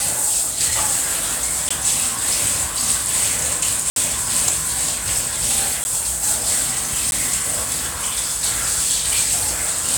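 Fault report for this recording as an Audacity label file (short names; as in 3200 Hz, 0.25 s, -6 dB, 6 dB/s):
1.690000	1.710000	gap 15 ms
3.900000	3.960000	gap 62 ms
5.840000	5.850000	gap 10 ms
7.110000	7.120000	gap 11 ms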